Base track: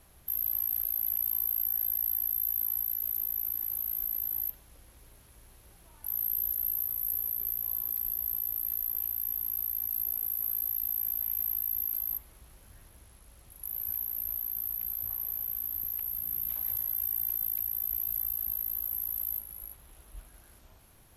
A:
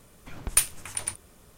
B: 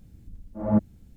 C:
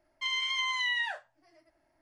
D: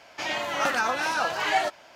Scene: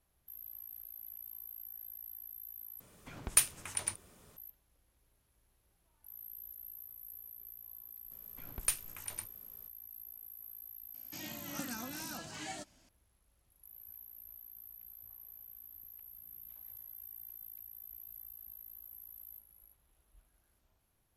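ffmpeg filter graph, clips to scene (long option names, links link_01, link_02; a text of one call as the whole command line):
ffmpeg -i bed.wav -i cue0.wav -i cue1.wav -i cue2.wav -i cue3.wav -filter_complex "[1:a]asplit=2[link_01][link_02];[0:a]volume=-18dB[link_03];[link_01]highpass=frequency=64:poles=1[link_04];[4:a]firequalizer=gain_entry='entry(270,0);entry(410,-17);entry(980,-21);entry(8500,3);entry(12000,-10)':delay=0.05:min_phase=1[link_05];[link_03]asplit=2[link_06][link_07];[link_06]atrim=end=2.804[link_08];[link_04]atrim=end=1.57,asetpts=PTS-STARTPTS,volume=-4.5dB[link_09];[link_07]atrim=start=4.366[link_10];[link_02]atrim=end=1.57,asetpts=PTS-STARTPTS,volume=-11dB,afade=type=in:duration=0.004:curve=hsin,afade=type=out:start_time=1.566:duration=0.004:curve=hsin,adelay=8110[link_11];[link_05]atrim=end=1.95,asetpts=PTS-STARTPTS,volume=-3dB,afade=type=in:duration=0.004:curve=hsin,afade=type=out:start_time=1.946:duration=0.004:curve=hsin,adelay=10940[link_12];[link_08][link_09]acrossfade=duration=0.004:curve1=hsin:curve2=hsin[link_13];[link_13][link_10]acrossfade=duration=0.004:curve1=hsin:curve2=hsin[link_14];[link_14][link_11][link_12]amix=inputs=3:normalize=0" out.wav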